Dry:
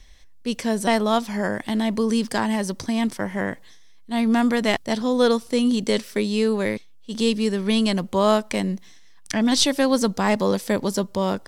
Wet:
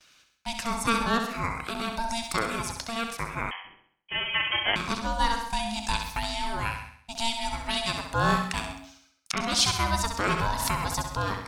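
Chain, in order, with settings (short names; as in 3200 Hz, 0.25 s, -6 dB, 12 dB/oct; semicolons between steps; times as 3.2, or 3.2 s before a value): reverb removal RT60 0.78 s; gate with hold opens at -43 dBFS; HPF 470 Hz 12 dB/oct; ring modulator 460 Hz; in parallel at -2 dB: compressor, threshold -35 dBFS, peak gain reduction 16.5 dB; 6.19–6.63 on the sum: transient shaper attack -7 dB, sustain +5 dB; flutter echo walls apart 11.3 m, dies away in 0.59 s; on a send at -11.5 dB: reverb RT60 0.30 s, pre-delay 97 ms; 3.51–4.76 on the sum: inverted band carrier 3200 Hz; 10.39–10.98 backwards sustainer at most 35 dB/s; gain -1.5 dB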